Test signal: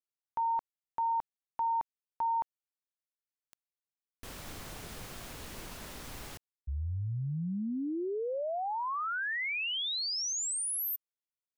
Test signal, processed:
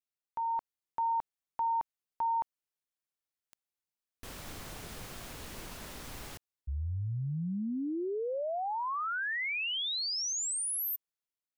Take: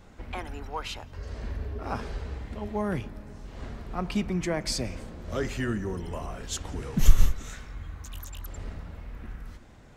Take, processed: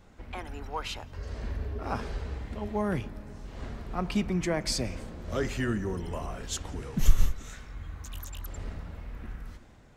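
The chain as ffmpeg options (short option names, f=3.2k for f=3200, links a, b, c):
-af "dynaudnorm=f=150:g=7:m=4dB,volume=-4dB"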